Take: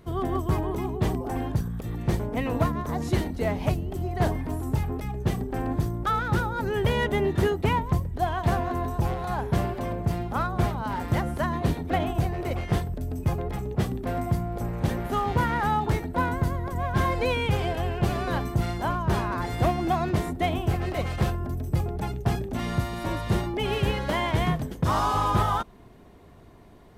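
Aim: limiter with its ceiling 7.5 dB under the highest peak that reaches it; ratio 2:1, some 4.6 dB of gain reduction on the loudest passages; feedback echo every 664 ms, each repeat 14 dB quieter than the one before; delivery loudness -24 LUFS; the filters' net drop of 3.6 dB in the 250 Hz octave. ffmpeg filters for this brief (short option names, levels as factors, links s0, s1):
-af "equalizer=f=250:t=o:g=-5.5,acompressor=threshold=0.0398:ratio=2,alimiter=level_in=1.12:limit=0.0631:level=0:latency=1,volume=0.891,aecho=1:1:664|1328:0.2|0.0399,volume=3.16"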